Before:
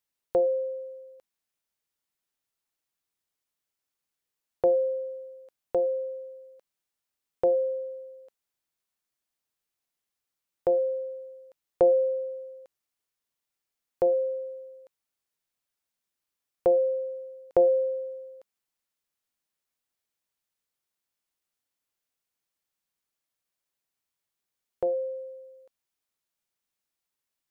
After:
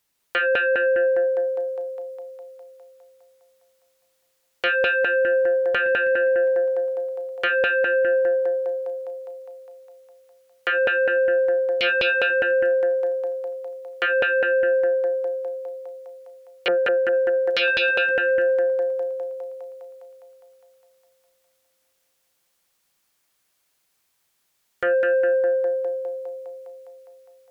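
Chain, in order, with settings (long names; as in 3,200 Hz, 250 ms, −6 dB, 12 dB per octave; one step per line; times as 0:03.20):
0:16.68–0:17.13: flat-topped bell 640 Hz −9 dB
feedback echo with a high-pass in the loop 204 ms, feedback 77%, high-pass 340 Hz, level −3 dB
sine wavefolder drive 14 dB, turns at −12 dBFS
level −5 dB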